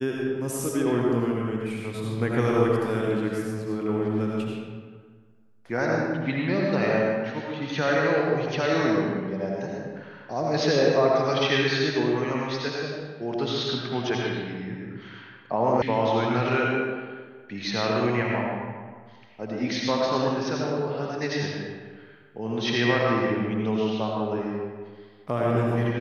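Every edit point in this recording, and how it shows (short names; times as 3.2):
15.82 sound cut off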